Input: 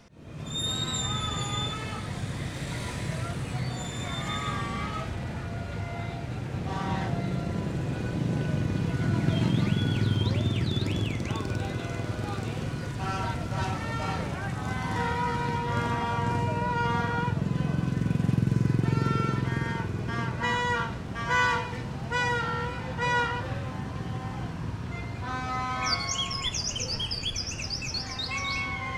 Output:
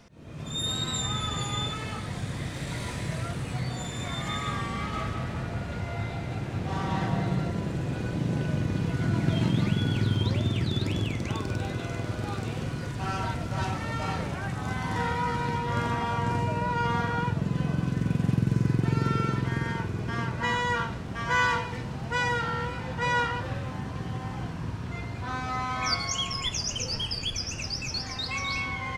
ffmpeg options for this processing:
-filter_complex "[0:a]asplit=3[a][b][c];[a]afade=t=out:st=4.92:d=0.02[d];[b]asplit=2[e][f];[f]adelay=188,lowpass=f=3.6k:p=1,volume=-4.5dB,asplit=2[g][h];[h]adelay=188,lowpass=f=3.6k:p=1,volume=0.48,asplit=2[i][j];[j]adelay=188,lowpass=f=3.6k:p=1,volume=0.48,asplit=2[k][l];[l]adelay=188,lowpass=f=3.6k:p=1,volume=0.48,asplit=2[m][n];[n]adelay=188,lowpass=f=3.6k:p=1,volume=0.48,asplit=2[o][p];[p]adelay=188,lowpass=f=3.6k:p=1,volume=0.48[q];[e][g][i][k][m][o][q]amix=inputs=7:normalize=0,afade=t=in:st=4.92:d=0.02,afade=t=out:st=7.49:d=0.02[r];[c]afade=t=in:st=7.49:d=0.02[s];[d][r][s]amix=inputs=3:normalize=0"

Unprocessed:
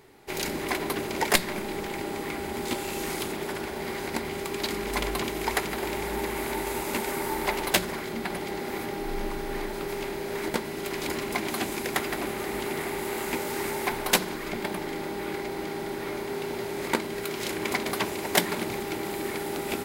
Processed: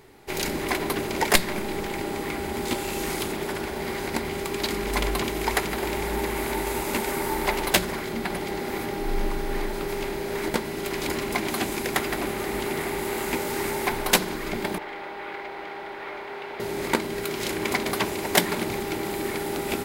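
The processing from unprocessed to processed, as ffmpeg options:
-filter_complex "[0:a]asettb=1/sr,asplit=3[a][b][c];[a]atrim=end=14.784[d];[b]atrim=start=14.78:end=16.6,asetpts=PTS-STARTPTS,afade=t=in:d=0.004:c=qsin,afade=t=out:st=1.816:d=0.004:c=qsin,acrossover=split=510 3500:gain=0.126 1 0.0891[e][f][g];[e][f][g]amix=inputs=3:normalize=0[h];[c]atrim=start=16.596[i];[d][h]acrossfade=d=0.004:c1=hsin:c2=qsin[j];[j][i]acrossfade=d=0.004:c1=qsin:c2=hsin,lowshelf=f=71:g=6.5,volume=2.5dB"

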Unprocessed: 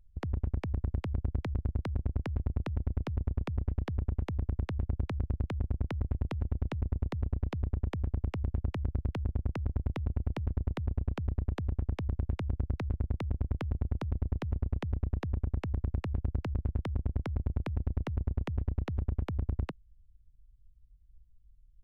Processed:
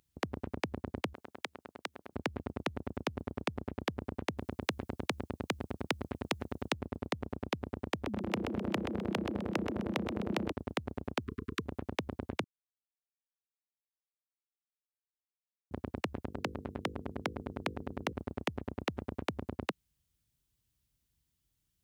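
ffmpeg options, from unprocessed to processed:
-filter_complex "[0:a]asettb=1/sr,asplit=3[a][b][c];[a]atrim=end=1.144[d];[b]atrim=start=1.14:end=2.13,asetpts=PTS-STARTPTS,afade=t=in:d=0.004:c=qsin,afade=t=out:st=0.986:d=0.004:c=qsin,highpass=f=1.2k:p=1[e];[c]atrim=start=2.126[f];[d][e]acrossfade=d=0.004:c1=hsin:c2=qsin[g];[g][f]acrossfade=d=0.004:c1=qsin:c2=hsin,asettb=1/sr,asplit=3[h][i][j];[h]atrim=end=4.384[k];[i]atrim=start=4.38:end=6.73,asetpts=PTS-STARTPTS,afade=t=in:d=0.004:c=qsin,afade=t=out:st=2.346:d=0.004:c=qsin,highshelf=f=3.2k:g=8[l];[j]atrim=start=6.726[m];[k][l]acrossfade=d=0.004:c1=hsin:c2=qsin[n];[n][m]acrossfade=d=0.004:c1=qsin:c2=hsin,asettb=1/sr,asplit=3[o][p][q];[o]atrim=end=7.934[r];[p]atrim=start=7.93:end=10.52,asetpts=PTS-STARTPTS,afade=t=in:d=0.004:c=qsin,afade=t=out:st=2.586:d=0.004:c=qsin,asplit=5[s][t][u][v][w];[t]adelay=128,afreqshift=130,volume=-7.5dB[x];[u]adelay=256,afreqshift=260,volume=-15.9dB[y];[v]adelay=384,afreqshift=390,volume=-24.3dB[z];[w]adelay=512,afreqshift=520,volume=-32.7dB[aa];[s][x][y][z][aa]amix=inputs=5:normalize=0,atrim=end_sample=114219[ab];[q]atrim=start=10.516[ac];[r][ab]acrossfade=d=0.004:c1=hsin:c2=qsin[ad];[ad][ac]acrossfade=d=0.004:c1=qsin:c2=hsin,asettb=1/sr,asplit=3[ae][af][ag];[ae]atrim=end=11.194[ah];[af]atrim=start=11.19:end=11.66,asetpts=PTS-STARTPTS,afade=t=in:d=0.004:c=qsin,afade=t=out:st=0.466:d=0.004:c=qsin,asuperstop=centerf=680:order=20:qfactor=1.2[ai];[ag]atrim=start=11.656[aj];[ah][ai]acrossfade=d=0.004:c1=hsin:c2=qsin[ak];[ak][aj]acrossfade=d=0.004:c1=qsin:c2=hsin,asettb=1/sr,asplit=3[al][am][an];[al]atrim=end=16.284[ao];[am]atrim=start=16.28:end=18.13,asetpts=PTS-STARTPTS,afade=t=in:d=0.004:c=qsin,afade=t=out:st=1.846:d=0.004:c=qsin,bandreject=f=50:t=h:w=6,bandreject=f=100:t=h:w=6,bandreject=f=150:t=h:w=6,bandreject=f=200:t=h:w=6,bandreject=f=250:t=h:w=6,bandreject=f=300:t=h:w=6,bandreject=f=350:t=h:w=6,bandreject=f=400:t=h:w=6,bandreject=f=450:t=h:w=6,bandreject=f=500:t=h:w=6[ap];[an]atrim=start=18.126[aq];[ao][ap]acrossfade=d=0.004:c1=hsin:c2=qsin[ar];[ar][aq]acrossfade=d=0.004:c1=qsin:c2=hsin,asplit=3[as][at][au];[as]atrim=end=12.44,asetpts=PTS-STARTPTS,afade=t=out:st=12.436:d=0.004:c=hsin[av];[at]atrim=start=12.44:end=15.71,asetpts=PTS-STARTPTS,volume=0[aw];[au]atrim=start=15.71,asetpts=PTS-STARTPTS,afade=t=in:d=0.004:c=hsin[ax];[av][aw][ax]concat=n=3:v=0:a=1,highpass=260,highshelf=f=2.4k:g=8,volume=5.5dB"

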